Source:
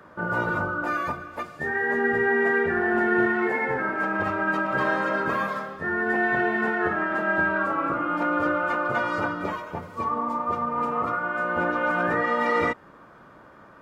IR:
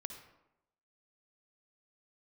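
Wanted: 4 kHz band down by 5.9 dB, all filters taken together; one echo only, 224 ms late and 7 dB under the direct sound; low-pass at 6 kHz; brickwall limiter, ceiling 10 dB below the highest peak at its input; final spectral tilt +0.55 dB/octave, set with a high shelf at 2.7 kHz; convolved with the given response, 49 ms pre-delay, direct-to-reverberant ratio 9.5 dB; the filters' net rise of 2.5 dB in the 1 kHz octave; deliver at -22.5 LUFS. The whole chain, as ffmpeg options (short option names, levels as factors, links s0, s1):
-filter_complex "[0:a]lowpass=6000,equalizer=f=1000:t=o:g=4.5,highshelf=f=2700:g=-5,equalizer=f=4000:t=o:g=-4.5,alimiter=limit=0.119:level=0:latency=1,aecho=1:1:224:0.447,asplit=2[s0][s1];[1:a]atrim=start_sample=2205,adelay=49[s2];[s1][s2]afir=irnorm=-1:irlink=0,volume=0.473[s3];[s0][s3]amix=inputs=2:normalize=0,volume=1.41"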